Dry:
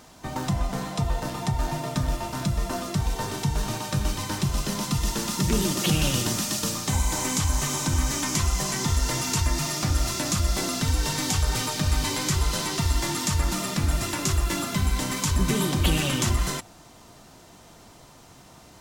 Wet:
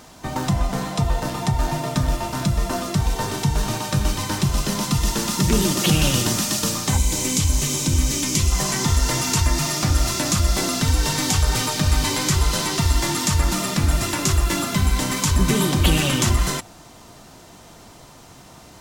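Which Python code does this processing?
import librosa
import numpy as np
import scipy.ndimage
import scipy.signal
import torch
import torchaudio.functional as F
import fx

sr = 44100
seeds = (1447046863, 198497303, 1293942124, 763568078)

y = fx.band_shelf(x, sr, hz=1100.0, db=-9.5, octaves=1.7, at=(6.97, 8.52))
y = y * 10.0 ** (5.0 / 20.0)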